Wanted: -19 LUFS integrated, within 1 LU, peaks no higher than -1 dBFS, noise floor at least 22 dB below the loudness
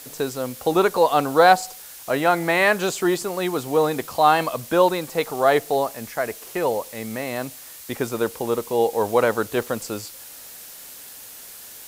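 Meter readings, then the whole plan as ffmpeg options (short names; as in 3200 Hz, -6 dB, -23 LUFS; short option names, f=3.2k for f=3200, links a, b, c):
noise floor -41 dBFS; noise floor target -44 dBFS; loudness -21.5 LUFS; peak -2.0 dBFS; loudness target -19.0 LUFS
-> -af "afftdn=nr=6:nf=-41"
-af "volume=2.5dB,alimiter=limit=-1dB:level=0:latency=1"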